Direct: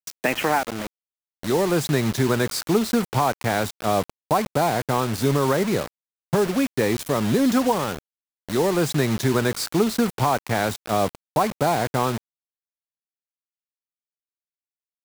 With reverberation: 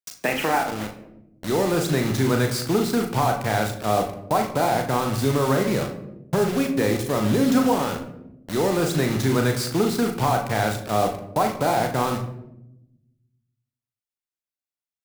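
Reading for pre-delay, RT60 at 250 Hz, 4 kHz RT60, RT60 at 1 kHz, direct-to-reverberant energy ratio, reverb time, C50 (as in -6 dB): 37 ms, 1.5 s, 0.45 s, 0.70 s, 3.5 dB, 0.85 s, 9.5 dB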